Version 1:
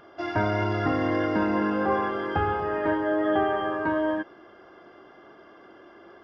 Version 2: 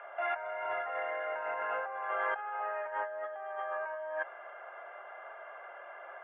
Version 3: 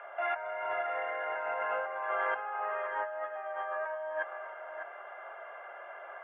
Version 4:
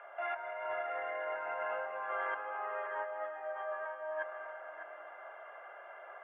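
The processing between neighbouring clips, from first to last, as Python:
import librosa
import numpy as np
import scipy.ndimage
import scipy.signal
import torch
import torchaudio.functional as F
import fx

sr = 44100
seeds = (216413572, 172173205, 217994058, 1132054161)

y1 = scipy.signal.sosfilt(scipy.signal.ellip(3, 1.0, 40, [590.0, 2500.0], 'bandpass', fs=sr, output='sos'), x)
y1 = fx.notch(y1, sr, hz=1100.0, q=11.0)
y1 = fx.over_compress(y1, sr, threshold_db=-37.0, ratio=-1.0)
y2 = y1 + 10.0 ** (-8.5 / 20.0) * np.pad(y1, (int(603 * sr / 1000.0), 0))[:len(y1)]
y2 = y2 * librosa.db_to_amplitude(1.0)
y3 = fx.rev_freeverb(y2, sr, rt60_s=3.2, hf_ratio=0.35, predelay_ms=115, drr_db=8.0)
y3 = y3 * librosa.db_to_amplitude(-5.0)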